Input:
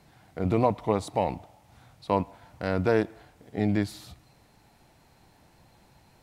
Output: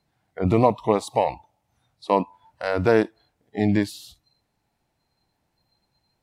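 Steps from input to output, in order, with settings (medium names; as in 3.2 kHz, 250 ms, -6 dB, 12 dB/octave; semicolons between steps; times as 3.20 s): spectral noise reduction 20 dB; trim +5.5 dB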